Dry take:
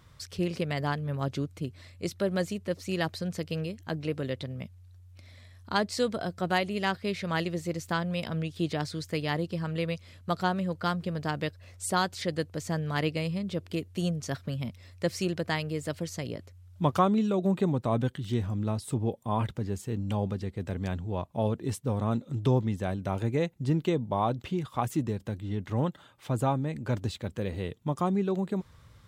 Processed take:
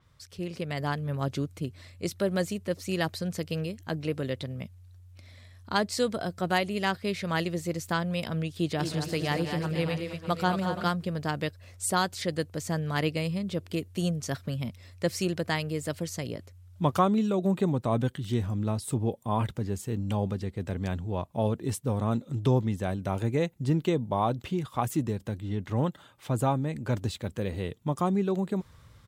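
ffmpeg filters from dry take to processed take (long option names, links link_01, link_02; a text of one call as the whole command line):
ffmpeg -i in.wav -filter_complex "[0:a]asplit=3[link_01][link_02][link_03];[link_01]afade=type=out:start_time=8.78:duration=0.02[link_04];[link_02]aecho=1:1:180|225|337|470|605:0.224|0.447|0.106|0.188|0.251,afade=type=in:start_time=8.78:duration=0.02,afade=type=out:start_time=10.87:duration=0.02[link_05];[link_03]afade=type=in:start_time=10.87:duration=0.02[link_06];[link_04][link_05][link_06]amix=inputs=3:normalize=0,dynaudnorm=framelen=200:gausssize=7:maxgain=8dB,adynamicequalizer=threshold=0.00708:dfrequency=7000:dqfactor=0.7:tfrequency=7000:tqfactor=0.7:attack=5:release=100:ratio=0.375:range=2.5:mode=boostabove:tftype=highshelf,volume=-7dB" out.wav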